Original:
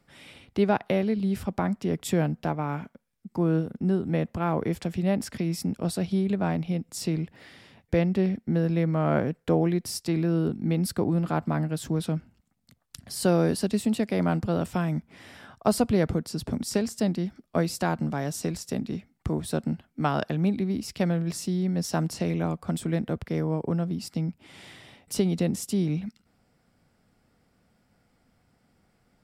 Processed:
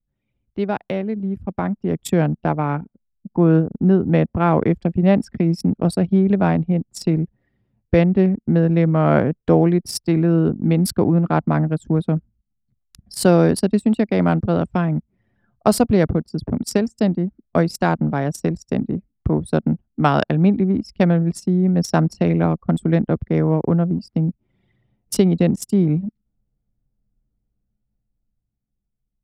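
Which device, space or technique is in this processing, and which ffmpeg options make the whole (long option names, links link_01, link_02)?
voice memo with heavy noise removal: -af "anlmdn=15.8,dynaudnorm=framelen=420:gausssize=9:maxgain=11.5dB"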